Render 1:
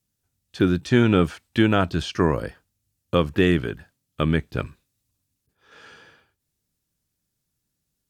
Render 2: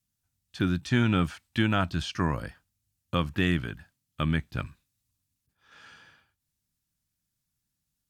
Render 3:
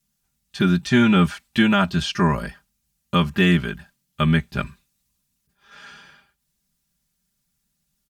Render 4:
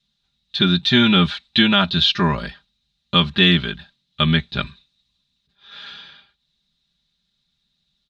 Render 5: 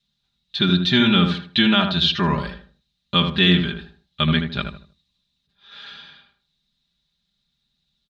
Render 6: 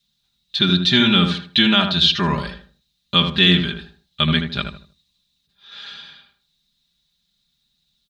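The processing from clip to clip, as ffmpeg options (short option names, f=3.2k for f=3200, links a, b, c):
-af "equalizer=f=430:w=1.6:g=-11.5,volume=-3.5dB"
-af "aecho=1:1:5:0.98,volume=5.5dB"
-af "lowpass=f=3.8k:t=q:w=10"
-filter_complex "[0:a]asplit=2[a][b];[b]adelay=78,lowpass=f=1.3k:p=1,volume=-4.5dB,asplit=2[c][d];[d]adelay=78,lowpass=f=1.3k:p=1,volume=0.33,asplit=2[e][f];[f]adelay=78,lowpass=f=1.3k:p=1,volume=0.33,asplit=2[g][h];[h]adelay=78,lowpass=f=1.3k:p=1,volume=0.33[i];[a][c][e][g][i]amix=inputs=5:normalize=0,volume=-2.5dB"
-af "crystalizer=i=2:c=0"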